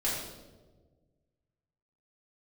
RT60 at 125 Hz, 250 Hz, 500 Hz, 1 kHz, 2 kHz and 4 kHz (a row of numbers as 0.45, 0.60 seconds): 2.1, 1.8, 1.7, 1.1, 0.80, 0.80 seconds